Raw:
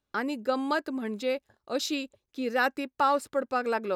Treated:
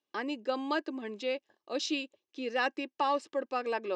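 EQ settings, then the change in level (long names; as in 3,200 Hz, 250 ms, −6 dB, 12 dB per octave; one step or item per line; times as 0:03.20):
Butterworth band-reject 1,400 Hz, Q 4.6
loudspeaker in its box 290–6,700 Hz, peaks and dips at 330 Hz +8 dB, 1,400 Hz +4 dB, 2,900 Hz +7 dB, 5,700 Hz +4 dB
−4.5 dB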